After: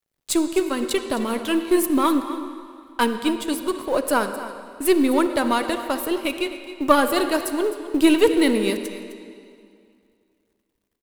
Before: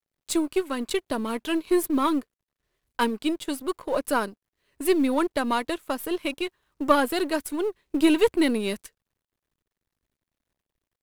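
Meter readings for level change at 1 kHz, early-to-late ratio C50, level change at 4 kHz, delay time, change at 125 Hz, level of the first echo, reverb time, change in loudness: +4.0 dB, 8.0 dB, +4.5 dB, 0.259 s, n/a, -14.5 dB, 2.4 s, +4.0 dB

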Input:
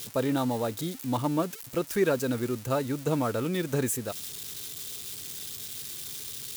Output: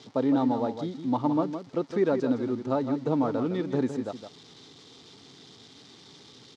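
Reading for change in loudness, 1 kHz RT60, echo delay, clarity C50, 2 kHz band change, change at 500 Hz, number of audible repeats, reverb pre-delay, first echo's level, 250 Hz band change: +2.5 dB, none, 0.161 s, none, -6.5 dB, +0.5 dB, 1, none, -9.0 dB, +3.5 dB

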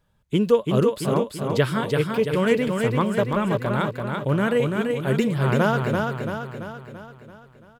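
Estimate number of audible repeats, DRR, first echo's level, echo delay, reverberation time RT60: 6, none, -4.0 dB, 0.337 s, none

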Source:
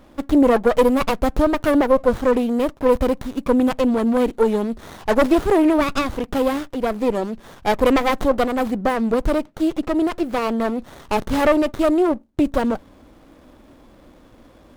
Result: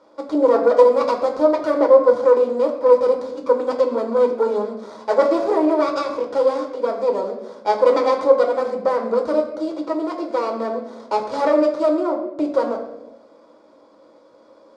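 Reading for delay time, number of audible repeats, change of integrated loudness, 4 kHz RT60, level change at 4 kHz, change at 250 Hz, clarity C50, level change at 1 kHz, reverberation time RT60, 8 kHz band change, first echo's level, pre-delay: none, none, +1.0 dB, 0.65 s, -5.5 dB, -6.0 dB, 8.0 dB, +0.5 dB, 1.0 s, n/a, none, 6 ms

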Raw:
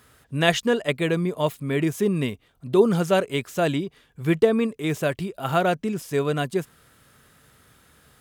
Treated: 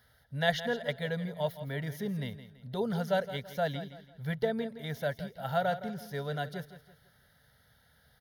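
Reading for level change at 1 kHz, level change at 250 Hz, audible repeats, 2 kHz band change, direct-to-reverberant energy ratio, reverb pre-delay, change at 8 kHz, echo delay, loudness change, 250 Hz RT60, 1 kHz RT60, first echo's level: -7.5 dB, -13.0 dB, 3, -8.0 dB, none, none, -16.0 dB, 0.166 s, -10.5 dB, none, none, -13.0 dB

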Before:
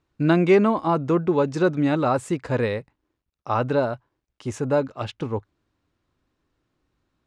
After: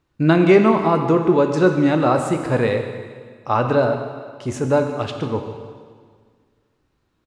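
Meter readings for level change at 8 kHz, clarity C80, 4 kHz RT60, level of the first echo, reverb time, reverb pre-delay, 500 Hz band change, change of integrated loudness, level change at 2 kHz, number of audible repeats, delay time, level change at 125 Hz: +4.5 dB, 7.5 dB, 1.7 s, -17.0 dB, 1.8 s, 6 ms, +5.0 dB, +4.5 dB, +5.0 dB, 1, 0.15 s, +4.0 dB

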